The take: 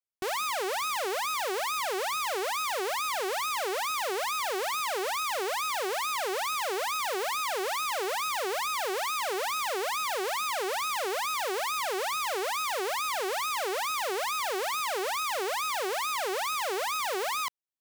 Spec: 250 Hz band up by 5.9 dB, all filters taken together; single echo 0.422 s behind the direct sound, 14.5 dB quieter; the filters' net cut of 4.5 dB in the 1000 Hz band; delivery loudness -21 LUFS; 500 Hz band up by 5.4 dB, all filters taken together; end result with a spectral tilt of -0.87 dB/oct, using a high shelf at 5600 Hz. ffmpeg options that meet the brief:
-af "equalizer=f=250:t=o:g=6,equalizer=f=500:t=o:g=7,equalizer=f=1k:t=o:g=-8.5,highshelf=f=5.6k:g=3,aecho=1:1:422:0.188,volume=7.5dB"

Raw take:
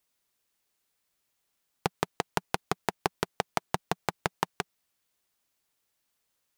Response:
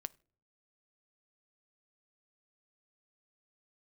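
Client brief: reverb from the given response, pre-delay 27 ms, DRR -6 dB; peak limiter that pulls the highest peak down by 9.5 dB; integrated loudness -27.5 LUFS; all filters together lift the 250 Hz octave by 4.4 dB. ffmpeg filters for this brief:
-filter_complex "[0:a]equalizer=f=250:t=o:g=7,alimiter=limit=-14dB:level=0:latency=1,asplit=2[a][b];[1:a]atrim=start_sample=2205,adelay=27[c];[b][c]afir=irnorm=-1:irlink=0,volume=9.5dB[d];[a][d]amix=inputs=2:normalize=0,volume=6.5dB"

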